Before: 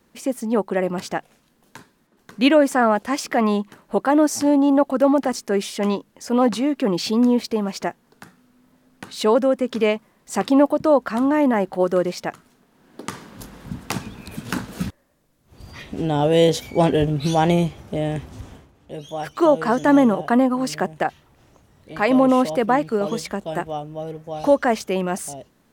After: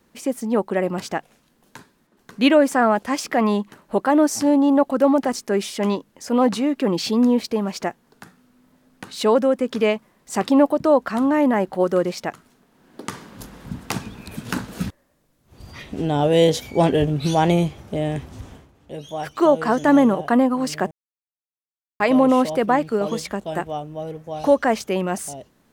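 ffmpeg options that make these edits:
-filter_complex "[0:a]asplit=3[s0][s1][s2];[s0]atrim=end=20.91,asetpts=PTS-STARTPTS,afade=t=out:st=20.906:d=0.004:c=hsin[s3];[s1]atrim=start=20.91:end=22,asetpts=PTS-STARTPTS,volume=0[s4];[s2]atrim=start=22,asetpts=PTS-STARTPTS,afade=t=in:d=0.004:c=hsin[s5];[s3][s4][s5]concat=n=3:v=0:a=1"

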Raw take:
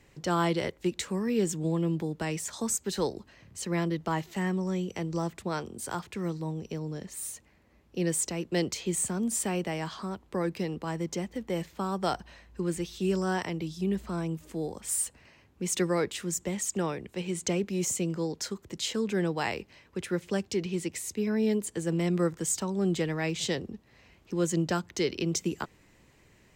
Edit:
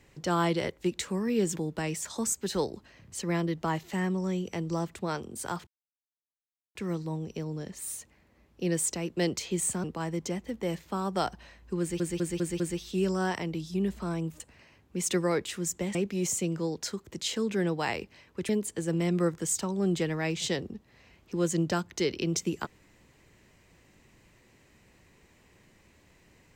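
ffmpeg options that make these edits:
-filter_complex "[0:a]asplit=11[s0][s1][s2][s3][s4][s5][s6][s7][s8][s9][s10];[s0]atrim=end=1.562[s11];[s1]atrim=start=1.988:end=6.1,asetpts=PTS-STARTPTS,afade=t=out:st=4.108:d=0.004:c=hsin,apad=pad_dur=1.08[s12];[s2]atrim=start=6.1:end=9.192,asetpts=PTS-STARTPTS,afade=t=in:d=0.004:c=hsin[s13];[s3]atrim=start=10.708:end=12.872[s14];[s4]atrim=start=12.668:end=12.872[s15];[s5]atrim=start=12.668:end=12.872[s16];[s6]atrim=start=12.668:end=12.872[s17];[s7]atrim=start=12.668:end=14.472[s18];[s8]atrim=start=15.058:end=16.612[s19];[s9]atrim=start=17.528:end=20.072[s20];[s10]atrim=start=21.478[s21];[s12][s13]concat=n=2:v=0:a=1[s22];[s11][s22]acrossfade=d=0.004:c1=hsin:c2=hsin[s23];[s23][s14]acrossfade=d=0.004:c1=hsin:c2=hsin[s24];[s24][s15]acrossfade=d=0.004:c1=hsin:c2=hsin[s25];[s25][s16]acrossfade=d=0.004:c1=hsin:c2=hsin[s26];[s26][s17]acrossfade=d=0.004:c1=hsin:c2=hsin[s27];[s27][s18]acrossfade=d=0.004:c1=hsin:c2=hsin[s28];[s28][s19]acrossfade=d=0.004:c1=hsin:c2=hsin[s29];[s29][s20]acrossfade=d=0.004:c1=hsin:c2=hsin[s30];[s30][s21]acrossfade=d=0.004:c1=hsin:c2=hsin"

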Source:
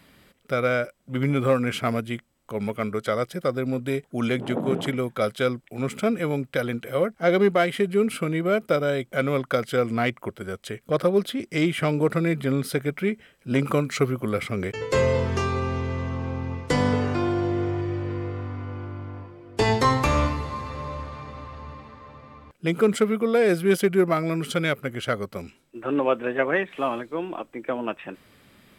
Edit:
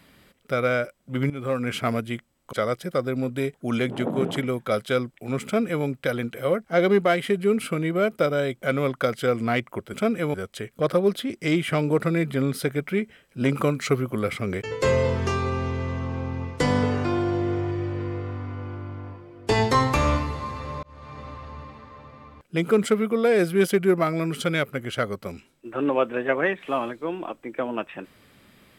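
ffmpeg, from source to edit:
-filter_complex "[0:a]asplit=6[s0][s1][s2][s3][s4][s5];[s0]atrim=end=1.3,asetpts=PTS-STARTPTS,afade=t=out:st=1.296:d=0.004:c=hsin:silence=0.177828[s6];[s1]atrim=start=1.3:end=2.532,asetpts=PTS-STARTPTS,afade=t=in:d=0.48:silence=0.177828[s7];[s2]atrim=start=3.028:end=10.442[s8];[s3]atrim=start=5.948:end=6.352[s9];[s4]atrim=start=10.438:end=20.93,asetpts=PTS-STARTPTS,afade=t=out:st=10.488:d=0.004:c=hsin[s10];[s5]atrim=start=20.93,asetpts=PTS-STARTPTS,afade=t=in:d=0.38[s11];[s6][s7]concat=n=2:v=0:a=1[s12];[s12][s8]acrossfade=d=0.004:c1=hsin:c2=hsin[s13];[s13][s9]acrossfade=d=0.004:c1=hsin:c2=hsin[s14];[s10][s11]concat=n=2:v=0:a=1[s15];[s14][s15]acrossfade=d=0.004:c1=hsin:c2=hsin"

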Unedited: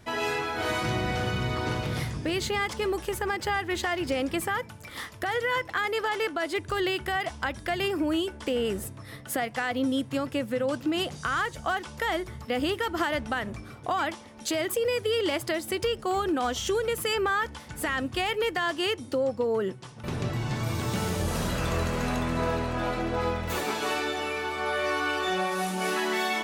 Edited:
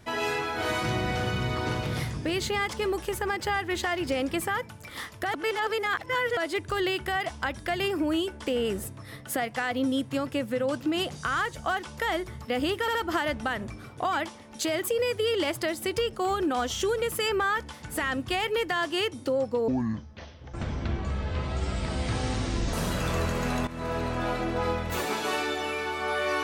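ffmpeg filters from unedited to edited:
-filter_complex "[0:a]asplit=8[s0][s1][s2][s3][s4][s5][s6][s7];[s0]atrim=end=5.342[s8];[s1]atrim=start=5.338:end=6.372,asetpts=PTS-STARTPTS,areverse[s9];[s2]atrim=start=6.368:end=12.882[s10];[s3]atrim=start=12.808:end=12.882[s11];[s4]atrim=start=12.808:end=19.544[s12];[s5]atrim=start=19.54:end=21.31,asetpts=PTS-STARTPTS,asetrate=25578,aresample=44100,atrim=end_sample=134581,asetpts=PTS-STARTPTS[s13];[s6]atrim=start=21.306:end=22.25,asetpts=PTS-STARTPTS,afade=t=out:st=0.94:d=0.004:c=hsin:silence=0.199526[s14];[s7]atrim=start=22.25,asetpts=PTS-STARTPTS,afade=t=in:d=0.4:silence=0.199526[s15];[s8][s9]acrossfade=d=0.004:c1=hsin:c2=hsin[s16];[s16][s10]acrossfade=d=0.004:c1=hsin:c2=hsin[s17];[s17][s11]acrossfade=d=0.004:c1=hsin:c2=hsin[s18];[s18][s12]acrossfade=d=0.004:c1=hsin:c2=hsin[s19];[s19][s13]acrossfade=d=0.004:c1=hsin:c2=hsin[s20];[s14][s15]concat=n=2:v=0:a=1[s21];[s20][s21]acrossfade=d=0.004:c1=hsin:c2=hsin"

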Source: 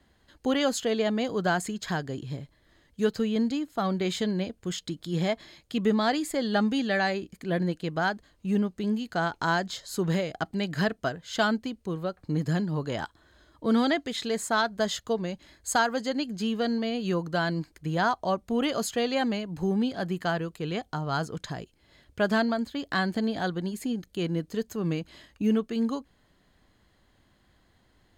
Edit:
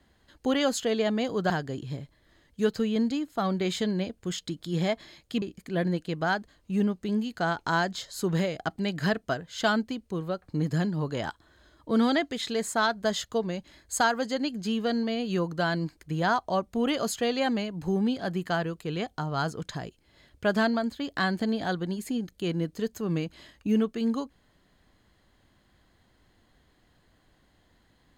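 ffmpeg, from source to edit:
-filter_complex "[0:a]asplit=3[s0][s1][s2];[s0]atrim=end=1.502[s3];[s1]atrim=start=1.898:end=5.822[s4];[s2]atrim=start=7.168[s5];[s3][s4]acrossfade=d=0.004:c1=hsin:c2=hsin[s6];[s6][s5]acrossfade=d=0.004:c1=hsin:c2=hsin"

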